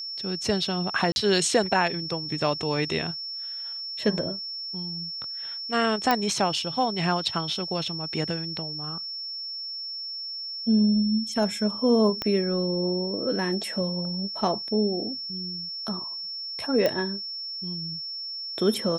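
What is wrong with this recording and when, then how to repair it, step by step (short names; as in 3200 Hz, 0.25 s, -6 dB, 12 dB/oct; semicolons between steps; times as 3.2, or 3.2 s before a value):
tone 5400 Hz -32 dBFS
1.12–1.16 gap 41 ms
6.11 pop -8 dBFS
12.22 pop -14 dBFS
16.86 pop -11 dBFS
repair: de-click; notch 5400 Hz, Q 30; interpolate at 1.12, 41 ms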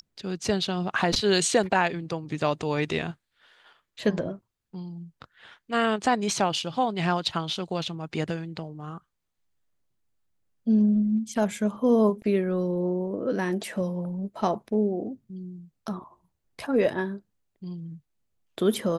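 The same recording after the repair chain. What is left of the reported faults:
12.22 pop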